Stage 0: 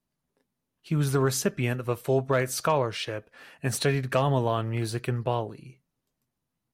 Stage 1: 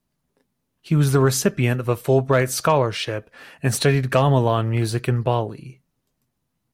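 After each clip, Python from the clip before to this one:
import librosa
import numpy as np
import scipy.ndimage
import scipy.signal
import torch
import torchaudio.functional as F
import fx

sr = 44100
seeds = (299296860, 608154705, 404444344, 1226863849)

y = fx.low_shelf(x, sr, hz=210.0, db=3.0)
y = y * 10.0 ** (6.0 / 20.0)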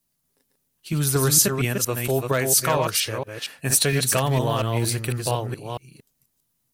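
y = fx.reverse_delay(x, sr, ms=231, wet_db=-4)
y = librosa.effects.preemphasis(y, coef=0.8, zi=[0.0])
y = y * 10.0 ** (7.5 / 20.0)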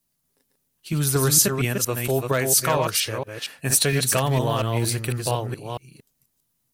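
y = x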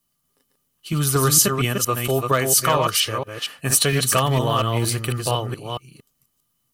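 y = fx.small_body(x, sr, hz=(1200.0, 3000.0), ring_ms=55, db=15)
y = y * 10.0 ** (1.5 / 20.0)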